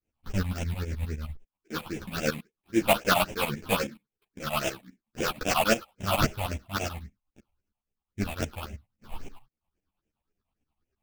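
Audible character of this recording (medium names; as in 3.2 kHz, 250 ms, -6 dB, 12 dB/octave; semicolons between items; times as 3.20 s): aliases and images of a low sample rate 2 kHz, jitter 20%; phasing stages 6, 3.7 Hz, lowest notch 380–1200 Hz; tremolo saw up 9.6 Hz, depth 85%; a shimmering, thickened sound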